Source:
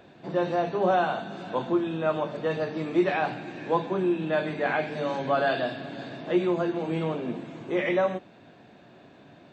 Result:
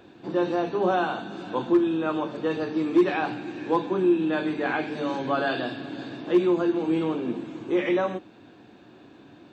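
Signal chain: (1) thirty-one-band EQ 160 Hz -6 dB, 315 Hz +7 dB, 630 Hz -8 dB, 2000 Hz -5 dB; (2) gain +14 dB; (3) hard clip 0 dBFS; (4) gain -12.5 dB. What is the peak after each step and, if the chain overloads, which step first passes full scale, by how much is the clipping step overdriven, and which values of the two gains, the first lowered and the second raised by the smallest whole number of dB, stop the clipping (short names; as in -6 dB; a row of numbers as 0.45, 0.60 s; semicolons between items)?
-10.0, +4.0, 0.0, -12.5 dBFS; step 2, 4.0 dB; step 2 +10 dB, step 4 -8.5 dB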